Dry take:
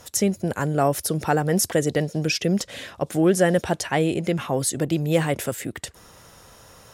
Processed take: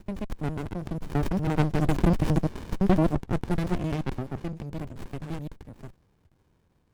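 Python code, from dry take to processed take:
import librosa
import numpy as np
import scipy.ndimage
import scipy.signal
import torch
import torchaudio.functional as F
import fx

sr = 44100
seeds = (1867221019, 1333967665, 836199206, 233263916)

y = fx.block_reorder(x, sr, ms=84.0, group=5)
y = fx.doppler_pass(y, sr, speed_mps=9, closest_m=4.9, pass_at_s=2.38)
y = fx.running_max(y, sr, window=65)
y = y * librosa.db_to_amplitude(3.0)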